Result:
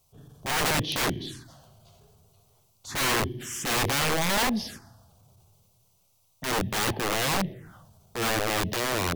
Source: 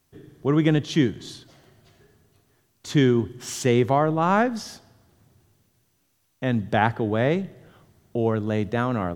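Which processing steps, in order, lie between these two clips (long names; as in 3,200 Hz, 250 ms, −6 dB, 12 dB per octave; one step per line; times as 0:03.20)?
phaser swept by the level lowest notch 290 Hz, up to 1,400 Hz, full sweep at −24 dBFS
wrap-around overflow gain 23 dB
transient designer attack −7 dB, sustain +2 dB
level +3.5 dB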